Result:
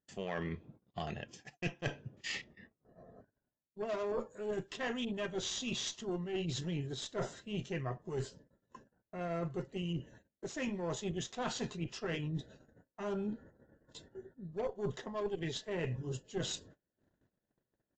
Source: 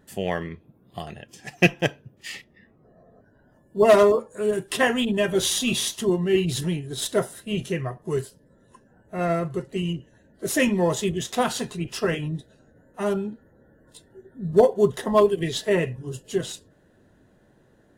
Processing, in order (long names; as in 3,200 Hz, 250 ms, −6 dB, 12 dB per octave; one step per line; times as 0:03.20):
harmonic generator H 8 −24 dB, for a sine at −3.5 dBFS
reversed playback
downward compressor 12 to 1, threshold −33 dBFS, peak gain reduction 23 dB
reversed playback
noise gate −54 dBFS, range −31 dB
downsampling to 16,000 Hz
level −1.5 dB